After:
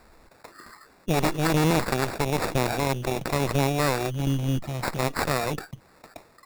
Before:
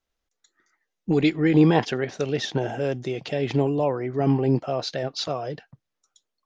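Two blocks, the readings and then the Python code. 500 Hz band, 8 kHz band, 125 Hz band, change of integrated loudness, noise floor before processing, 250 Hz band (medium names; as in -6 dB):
-3.0 dB, no reading, 0.0 dB, -2.0 dB, -82 dBFS, -5.0 dB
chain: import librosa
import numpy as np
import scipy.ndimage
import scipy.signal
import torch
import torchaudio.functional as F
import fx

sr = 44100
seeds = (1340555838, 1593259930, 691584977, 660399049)

y = fx.quant_float(x, sr, bits=4)
y = fx.spec_box(y, sr, start_s=4.1, length_s=0.89, low_hz=230.0, high_hz=2700.0, gain_db=-18)
y = fx.dynamic_eq(y, sr, hz=300.0, q=1.3, threshold_db=-30.0, ratio=4.0, max_db=-5)
y = fx.cheby_harmonics(y, sr, harmonics=(8,), levels_db=(-10,), full_scale_db=-6.0)
y = fx.sample_hold(y, sr, seeds[0], rate_hz=3100.0, jitter_pct=0)
y = fx.env_flatten(y, sr, amount_pct=50)
y = y * librosa.db_to_amplitude(-5.5)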